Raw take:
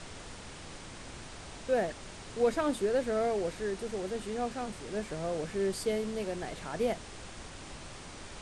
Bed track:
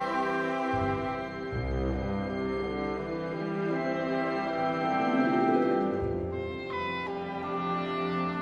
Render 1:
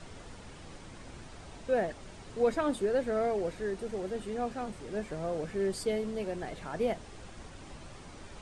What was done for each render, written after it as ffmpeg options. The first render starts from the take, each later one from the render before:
-af "afftdn=nr=7:nf=-47"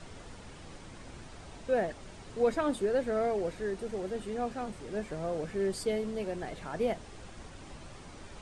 -af anull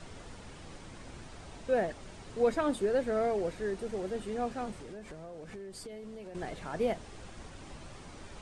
-filter_complex "[0:a]asettb=1/sr,asplit=3[a][b][c];[a]atrim=end=4.744[d];[b]atrim=start=4.74:end=6.35,asetpts=PTS-STARTPTS,afade=t=in:d=0.004:c=qsin,afade=t=out:st=1.606:d=0.004:c=qsin,acompressor=threshold=-41dB:ratio=12:attack=3.2:release=140:knee=1:detection=peak[e];[c]atrim=start=6.346[f];[d][e]acrossfade=d=0.004:c1=hsin:c2=qsin[g];[g][f]acrossfade=d=0.004:c1=qsin:c2=hsin"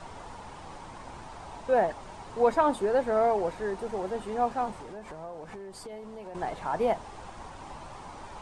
-af "equalizer=f=910:t=o:w=0.91:g=14.5"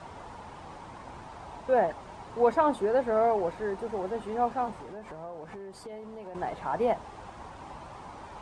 -af "highpass=42,highshelf=f=4.1k:g=-7"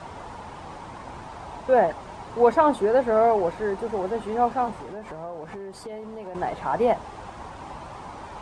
-af "volume=5.5dB"

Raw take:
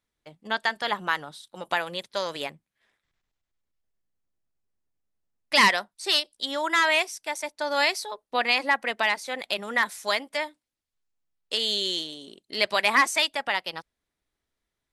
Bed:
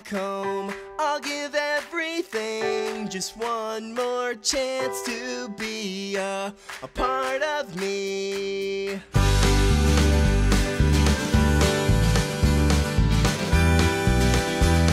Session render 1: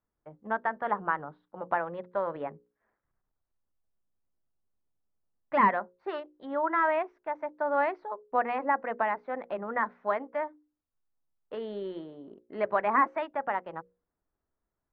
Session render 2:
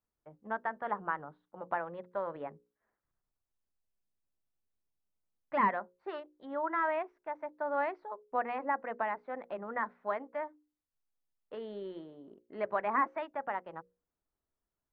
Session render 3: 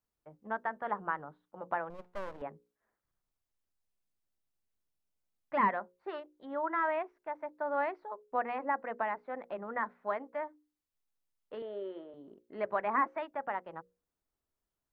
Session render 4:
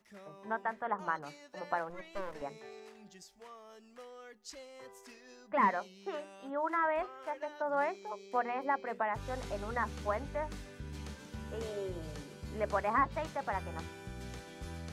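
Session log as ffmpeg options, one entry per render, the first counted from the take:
-af "lowpass=f=1.4k:w=0.5412,lowpass=f=1.4k:w=1.3066,bandreject=f=60:t=h:w=6,bandreject=f=120:t=h:w=6,bandreject=f=180:t=h:w=6,bandreject=f=240:t=h:w=6,bandreject=f=300:t=h:w=6,bandreject=f=360:t=h:w=6,bandreject=f=420:t=h:w=6,bandreject=f=480:t=h:w=6,bandreject=f=540:t=h:w=6"
-af "volume=-5.5dB"
-filter_complex "[0:a]asettb=1/sr,asplit=3[a][b][c];[a]atrim=end=1.904[d];[b]atrim=start=1.9:end=2.42,asetpts=PTS-STARTPTS,afade=t=in:d=0.004:c=qsin,afade=t=out:st=0.516:d=0.004:c=qsin,aeval=exprs='max(val(0),0)':c=same[e];[c]atrim=start=2.416[f];[d][e]acrossfade=d=0.004:c1=hsin:c2=qsin[g];[g][f]acrossfade=d=0.004:c1=qsin:c2=hsin,asettb=1/sr,asplit=3[h][i][j];[h]atrim=end=11.624[k];[i]atrim=start=11.62:end=12.14,asetpts=PTS-STARTPTS,afade=t=in:d=0.004:c=qsin,afade=t=out:st=0.516:d=0.004:c=qsin,highpass=340,equalizer=f=400:t=q:w=4:g=3,equalizer=f=600:t=q:w=4:g=8,equalizer=f=1.3k:t=q:w=4:g=4,lowpass=f=3.2k:w=0.5412,lowpass=f=3.2k:w=1.3066[l];[j]atrim=start=12.136[m];[k][l]acrossfade=d=0.004:c1=hsin:c2=qsin[n];[n][m]acrossfade=d=0.004:c1=qsin:c2=hsin"
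-filter_complex "[1:a]volume=-25dB[a];[0:a][a]amix=inputs=2:normalize=0"

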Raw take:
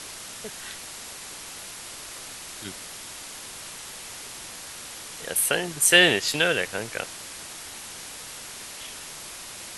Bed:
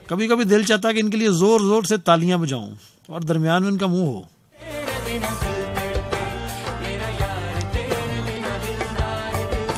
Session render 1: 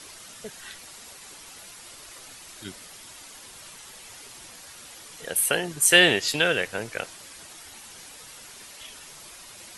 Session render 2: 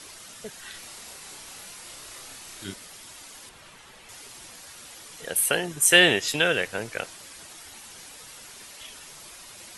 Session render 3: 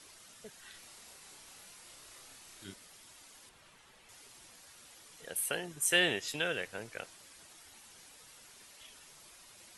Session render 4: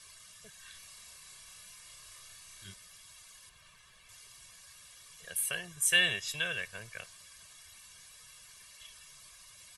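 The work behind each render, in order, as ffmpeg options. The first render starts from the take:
-af "afftdn=nr=8:nf=-40"
-filter_complex "[0:a]asettb=1/sr,asplit=3[a][b][c];[a]atrim=end=0.714[d];[b]atrim=start=0.71:end=2.74,asetpts=PTS-STARTPTS,afade=t=in:d=0.004:c=qsin,afade=t=out:st=2.026:d=0.004:c=qsin,asplit=2[e][f];[f]adelay=31,volume=-2.5dB[g];[e][g]amix=inputs=2:normalize=0,atrim=end_sample=89523[h];[c]atrim=start=2.736[i];[d][h]acrossfade=d=0.004:c1=hsin:c2=qsin[j];[j][i]acrossfade=d=0.004:c1=qsin:c2=hsin,asettb=1/sr,asplit=3[k][l][m];[k]atrim=end=3.494[n];[l]atrim=start=3.49:end=4.09,asetpts=PTS-STARTPTS,afade=t=in:d=0.004:c=qsin,afade=t=out:st=0.596:d=0.004:c=qsin,bass=f=250:g=1,treble=f=4k:g=-10[o];[m]atrim=start=4.086[p];[n][o]acrossfade=d=0.004:c1=hsin:c2=qsin[q];[q][p]acrossfade=d=0.004:c1=qsin:c2=hsin,asettb=1/sr,asplit=3[r][s][t];[r]atrim=end=5.664[u];[s]atrim=start=5.66:end=6.54,asetpts=PTS-STARTPTS,afade=t=in:d=0.004:c=qsin,afade=t=out:st=0.876:d=0.004:c=qsin,bandreject=f=4.5k:w=7.2[v];[t]atrim=start=6.536[w];[u][v]acrossfade=d=0.004:c1=hsin:c2=qsin[x];[x][w]acrossfade=d=0.004:c1=qsin:c2=hsin"
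-af "volume=-11.5dB"
-af "equalizer=f=480:w=1:g=-13,aecho=1:1:1.8:0.82"

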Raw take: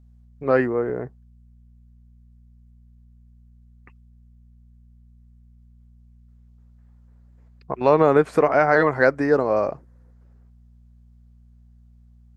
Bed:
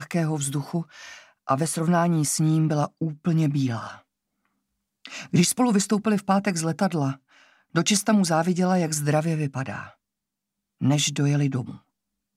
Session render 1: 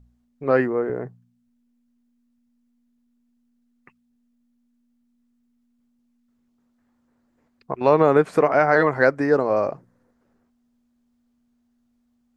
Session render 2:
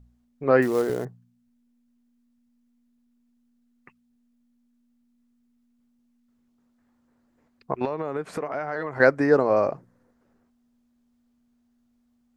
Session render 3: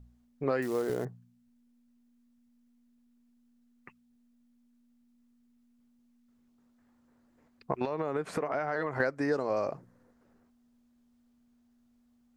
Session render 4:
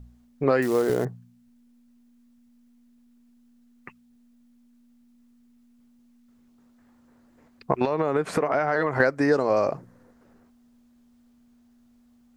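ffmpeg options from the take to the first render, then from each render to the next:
-af "bandreject=f=60:t=h:w=4,bandreject=f=120:t=h:w=4,bandreject=f=180:t=h:w=4"
-filter_complex "[0:a]asettb=1/sr,asplit=3[a][b][c];[a]atrim=end=0.624[d];[b]atrim=start=0.62:end=1.05,asetpts=PTS-STARTPTS,afade=t=in:d=0.004:c=qsin,afade=t=out:st=0.426:d=0.004:c=qsin,acrusher=bits=5:mode=log:mix=0:aa=0.000001[e];[c]atrim=start=1.046[f];[d][e]acrossfade=d=0.004:c1=hsin:c2=qsin[g];[g][f]acrossfade=d=0.004:c1=qsin:c2=hsin,asettb=1/sr,asplit=3[h][i][j];[h]atrim=end=7.854[k];[i]atrim=start=7.85:end=9,asetpts=PTS-STARTPTS,afade=t=in:d=0.004:c=qsin,afade=t=out:st=1.146:d=0.004:c=qsin,acompressor=threshold=-30dB:ratio=3:attack=3.2:release=140:knee=1:detection=peak[l];[j]atrim=start=8.996[m];[k][l]acrossfade=d=0.004:c1=hsin:c2=qsin[n];[n][m]acrossfade=d=0.004:c1=qsin:c2=hsin"
-filter_complex "[0:a]acrossover=split=3100[a][b];[a]acompressor=threshold=-27dB:ratio=6[c];[b]alimiter=level_in=13.5dB:limit=-24dB:level=0:latency=1:release=232,volume=-13.5dB[d];[c][d]amix=inputs=2:normalize=0"
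-af "volume=8.5dB"

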